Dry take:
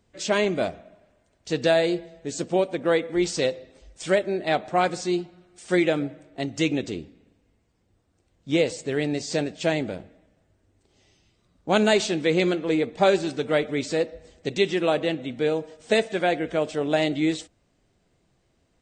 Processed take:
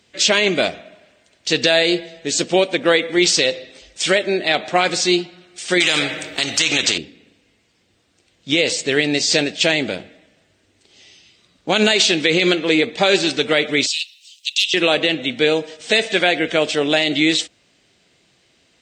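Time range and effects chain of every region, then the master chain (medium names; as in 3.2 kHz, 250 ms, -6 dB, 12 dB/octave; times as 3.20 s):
5.80–6.98 s: treble shelf 6.6 kHz +6.5 dB + spectrum-flattening compressor 2:1
13.86–14.74 s: hard clipper -16 dBFS + word length cut 12-bit, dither none + elliptic high-pass 2.8 kHz, stop band 50 dB
whole clip: frequency weighting D; peak limiter -11.5 dBFS; trim +7.5 dB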